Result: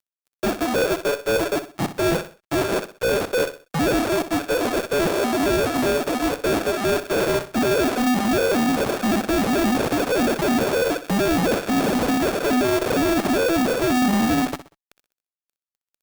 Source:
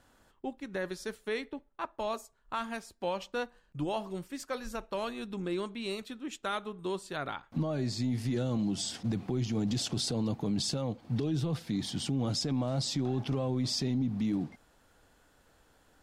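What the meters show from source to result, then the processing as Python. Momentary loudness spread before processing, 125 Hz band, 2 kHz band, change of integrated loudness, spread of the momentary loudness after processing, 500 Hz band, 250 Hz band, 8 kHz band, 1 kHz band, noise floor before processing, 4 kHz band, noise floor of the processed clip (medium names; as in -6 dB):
8 LU, +3.0 dB, +18.0 dB, +13.0 dB, 4 LU, +16.5 dB, +12.0 dB, +11.0 dB, +15.5 dB, -67 dBFS, +8.5 dB, under -85 dBFS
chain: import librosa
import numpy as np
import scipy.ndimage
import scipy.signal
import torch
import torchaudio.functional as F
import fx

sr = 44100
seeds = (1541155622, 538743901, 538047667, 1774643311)

p1 = fx.sine_speech(x, sr)
p2 = fx.high_shelf(p1, sr, hz=2800.0, db=11.5)
p3 = fx.sample_hold(p2, sr, seeds[0], rate_hz=1000.0, jitter_pct=0)
p4 = fx.highpass(p3, sr, hz=420.0, slope=6)
p5 = fx.fuzz(p4, sr, gain_db=52.0, gate_db=-59.0)
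p6 = p5 + fx.echo_feedback(p5, sr, ms=63, feedback_pct=33, wet_db=-12.5, dry=0)
y = p6 * 10.0 ** (-5.0 / 20.0)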